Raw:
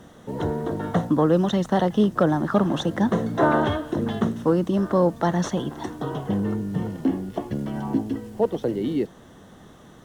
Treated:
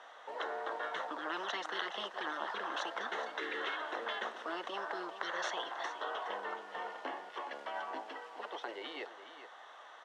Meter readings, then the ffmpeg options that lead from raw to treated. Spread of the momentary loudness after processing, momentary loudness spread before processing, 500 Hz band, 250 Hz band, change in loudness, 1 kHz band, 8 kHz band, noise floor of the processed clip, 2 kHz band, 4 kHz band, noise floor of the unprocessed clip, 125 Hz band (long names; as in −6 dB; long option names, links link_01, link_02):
8 LU, 10 LU, −18.5 dB, −29.5 dB, −16.0 dB, −10.0 dB, −11.5 dB, −54 dBFS, −3.5 dB, −4.0 dB, −48 dBFS, below −40 dB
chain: -af "highpass=frequency=710:width=0.5412,highpass=frequency=710:width=1.3066,afftfilt=real='re*lt(hypot(re,im),0.0708)':imag='im*lt(hypot(re,im),0.0708)':win_size=1024:overlap=0.75,lowpass=3200,aecho=1:1:419:0.251,volume=2dB"